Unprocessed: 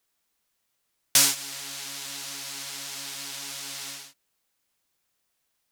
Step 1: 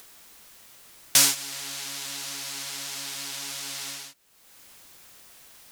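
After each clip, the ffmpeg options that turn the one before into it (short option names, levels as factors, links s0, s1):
-af "acompressor=mode=upward:threshold=0.0251:ratio=2.5,volume=1.12"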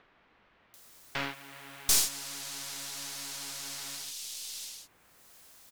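-filter_complex "[0:a]acrossover=split=2700[s0][s1];[s1]adelay=740[s2];[s0][s2]amix=inputs=2:normalize=0,aeval=exprs='(tanh(8.91*val(0)+0.75)-tanh(0.75))/8.91':c=same"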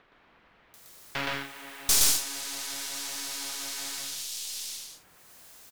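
-af "aecho=1:1:81.63|119.5|177.8:0.282|0.891|0.282,volume=1.19"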